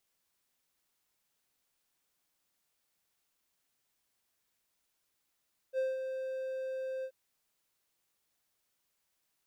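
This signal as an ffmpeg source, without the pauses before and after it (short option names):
-f lavfi -i "aevalsrc='0.0501*(1-4*abs(mod(524*t+0.25,1)-0.5))':d=1.379:s=44100,afade=t=in:d=0.052,afade=t=out:st=0.052:d=0.186:silence=0.447,afade=t=out:st=1.31:d=0.069"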